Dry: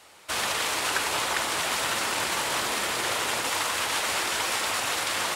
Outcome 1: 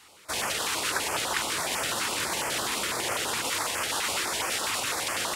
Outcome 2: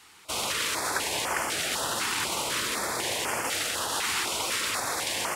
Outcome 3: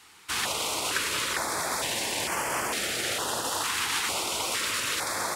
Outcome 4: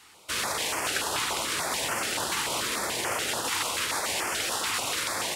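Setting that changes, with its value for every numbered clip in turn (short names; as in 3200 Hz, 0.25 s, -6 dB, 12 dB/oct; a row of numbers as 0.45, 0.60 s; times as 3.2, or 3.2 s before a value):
stepped notch, rate: 12, 4, 2.2, 6.9 Hz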